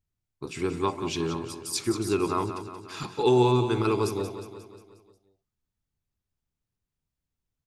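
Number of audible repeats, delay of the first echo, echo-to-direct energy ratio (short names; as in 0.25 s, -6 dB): 5, 0.179 s, -8.5 dB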